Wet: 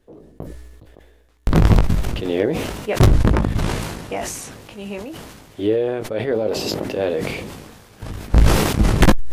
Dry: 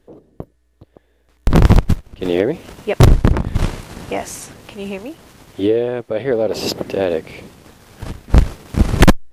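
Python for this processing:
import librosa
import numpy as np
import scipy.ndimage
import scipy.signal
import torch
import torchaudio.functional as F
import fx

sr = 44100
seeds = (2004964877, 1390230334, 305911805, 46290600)

y = fx.doubler(x, sr, ms=19.0, db=-9.0)
y = fx.sustainer(y, sr, db_per_s=38.0)
y = F.gain(torch.from_numpy(y), -4.5).numpy()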